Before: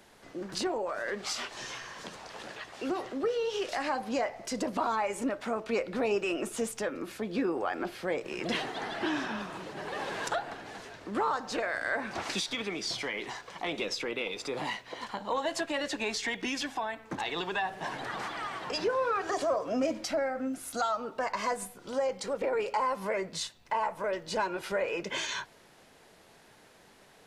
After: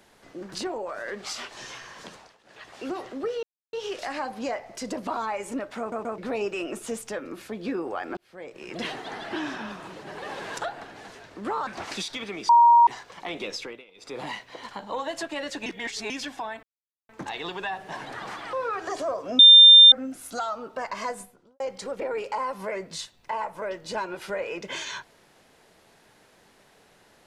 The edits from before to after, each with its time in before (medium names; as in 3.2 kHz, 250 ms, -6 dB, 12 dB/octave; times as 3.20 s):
2.11–2.70 s: dip -19.5 dB, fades 0.26 s
3.43 s: insert silence 0.30 s
5.49 s: stutter in place 0.13 s, 3 plays
7.87–8.59 s: fade in
11.37–12.05 s: delete
12.87–13.25 s: bleep 943 Hz -11.5 dBFS
13.98–14.56 s: dip -19.5 dB, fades 0.24 s
16.04–16.48 s: reverse
17.01 s: insert silence 0.46 s
18.45–18.95 s: delete
19.81–20.34 s: bleep 3.6 kHz -7 dBFS
21.52–22.02 s: studio fade out